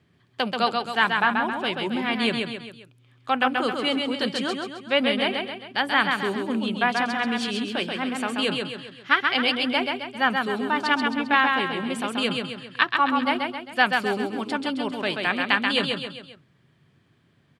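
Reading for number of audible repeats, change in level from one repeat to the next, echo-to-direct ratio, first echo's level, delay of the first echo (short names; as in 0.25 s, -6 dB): 4, -6.5 dB, -3.0 dB, -4.0 dB, 0.133 s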